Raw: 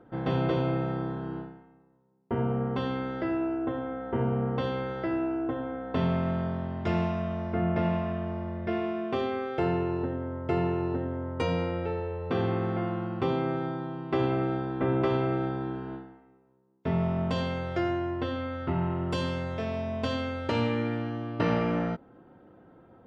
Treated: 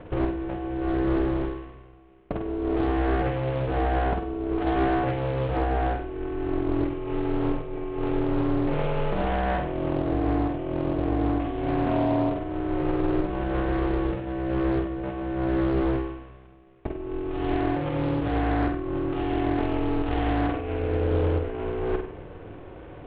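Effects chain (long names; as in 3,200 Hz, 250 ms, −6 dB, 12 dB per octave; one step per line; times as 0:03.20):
variable-slope delta modulation 16 kbit/s
low-shelf EQ 230 Hz +10.5 dB
compressor whose output falls as the input rises −28 dBFS, ratio −0.5
brickwall limiter −21.5 dBFS, peak gain reduction 7.5 dB
ring modulation 200 Hz
flutter between parallel walls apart 8.3 metres, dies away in 0.57 s
highs frequency-modulated by the lows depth 0.38 ms
level +6.5 dB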